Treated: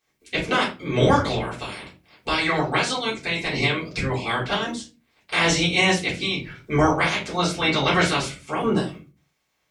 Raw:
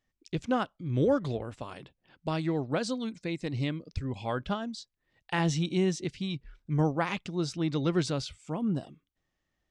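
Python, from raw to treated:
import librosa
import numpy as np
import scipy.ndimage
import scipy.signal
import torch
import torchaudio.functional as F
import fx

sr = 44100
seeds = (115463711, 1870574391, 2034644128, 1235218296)

y = fx.spec_clip(x, sr, under_db=24)
y = scipy.signal.sosfilt(scipy.signal.butter(2, 55.0, 'highpass', fs=sr, output='sos'), y)
y = fx.peak_eq(y, sr, hz=2200.0, db=7.5, octaves=0.26)
y = fx.room_shoebox(y, sr, seeds[0], volume_m3=130.0, walls='furnished', distance_m=3.7)
y = y * 10.0 ** (-1.0 / 20.0)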